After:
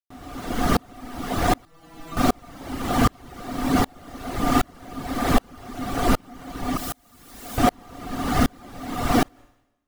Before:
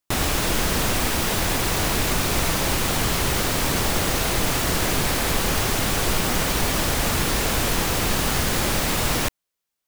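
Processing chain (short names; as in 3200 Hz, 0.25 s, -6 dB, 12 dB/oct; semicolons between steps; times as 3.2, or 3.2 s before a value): high shelf 3000 Hz -10 dB; notch 2500 Hz, Q 17; small resonant body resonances 260/720/1200 Hz, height 14 dB, ringing for 75 ms; reverb removal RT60 1.6 s; plate-style reverb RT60 0.55 s, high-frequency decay 1×, pre-delay 0.105 s, DRR 7.5 dB; vocal rider; 1.65–2.17 metallic resonator 160 Hz, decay 0.22 s, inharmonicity 0.002; 6.77–7.58 pre-emphasis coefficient 0.8; dB-ramp tremolo swelling 1.3 Hz, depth 36 dB; gain +7.5 dB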